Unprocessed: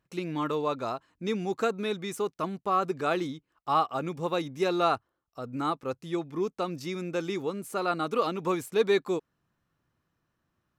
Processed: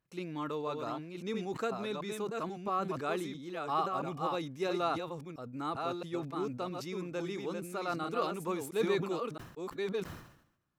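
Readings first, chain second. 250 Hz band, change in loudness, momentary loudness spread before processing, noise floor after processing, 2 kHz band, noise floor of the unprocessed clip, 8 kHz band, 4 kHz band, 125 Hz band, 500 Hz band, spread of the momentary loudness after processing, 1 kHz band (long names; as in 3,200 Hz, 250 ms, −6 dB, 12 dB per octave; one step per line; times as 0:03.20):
−5.0 dB, −6.0 dB, 8 LU, −62 dBFS, −5.5 dB, −80 dBFS, −4.5 dB, −5.5 dB, −4.0 dB, −6.0 dB, 8 LU, −6.0 dB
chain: delay that plays each chunk backwards 670 ms, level −4.5 dB
level that may fall only so fast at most 80 dB per second
level −7.5 dB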